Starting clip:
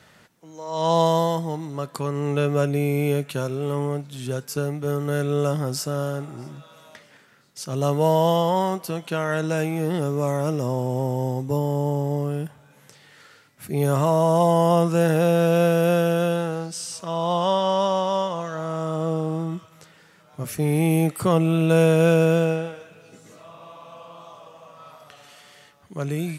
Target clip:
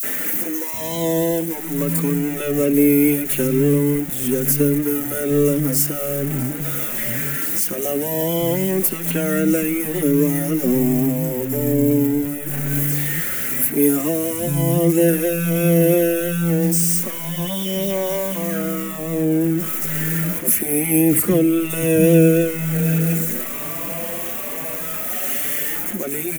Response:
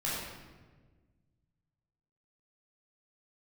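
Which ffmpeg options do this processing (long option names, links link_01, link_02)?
-filter_complex "[0:a]aeval=exprs='val(0)+0.5*0.0422*sgn(val(0))':channel_layout=same,acrossover=split=330|450|1800[link_01][link_02][link_03][link_04];[link_03]acompressor=threshold=-34dB:ratio=6[link_05];[link_01][link_02][link_05][link_04]amix=inputs=4:normalize=0,equalizer=frequency=125:width_type=o:width=1:gain=-7,equalizer=frequency=250:width_type=o:width=1:gain=11,equalizer=frequency=1000:width_type=o:width=1:gain=-10,equalizer=frequency=2000:width_type=o:width=1:gain=6,equalizer=frequency=4000:width_type=o:width=1:gain=-5,equalizer=frequency=8000:width_type=o:width=1:gain=-7,acrossover=split=190|3900[link_06][link_07][link_08];[link_07]adelay=30[link_09];[link_06]adelay=730[link_10];[link_10][link_09][link_08]amix=inputs=3:normalize=0,aexciter=amount=3:drive=8.8:freq=6700,asettb=1/sr,asplit=3[link_11][link_12][link_13];[link_11]atrim=end=9.964[link_14];[link_12]atrim=start=9.96:end=10.81,asetpts=PTS-STARTPTS,afade=type=in:duration=0.004:curve=qsin,afade=type=out:start_time=0.846:duration=0.004:curve=qsin,bandreject=frequency=7900:width=11[link_15];[link_13]atrim=start=10.806[link_16];[link_14][link_15]acrossfade=duration=0.004:curve1=hsin:curve2=qsin[link_17];[link_17][link_16]acrossfade=duration=0.004:curve1=qsin:curve2=hsin,asplit=2[link_18][link_19];[link_19]adelay=4.7,afreqshift=1.1[link_20];[link_18][link_20]amix=inputs=2:normalize=1,volume=6.5dB"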